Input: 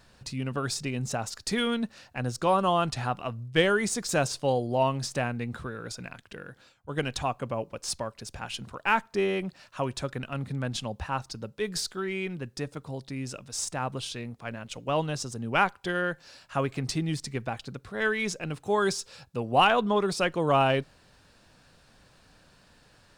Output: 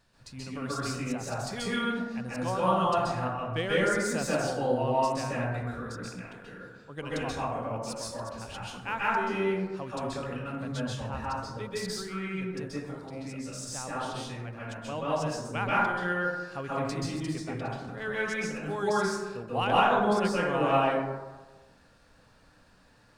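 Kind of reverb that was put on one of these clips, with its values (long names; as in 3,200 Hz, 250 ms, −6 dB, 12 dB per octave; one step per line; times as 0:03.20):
dense smooth reverb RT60 1.2 s, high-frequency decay 0.35×, pre-delay 120 ms, DRR −8 dB
level −10 dB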